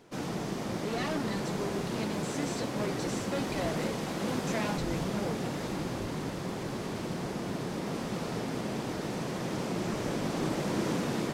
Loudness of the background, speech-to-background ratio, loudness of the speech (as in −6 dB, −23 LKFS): −34.5 LKFS, −3.5 dB, −38.0 LKFS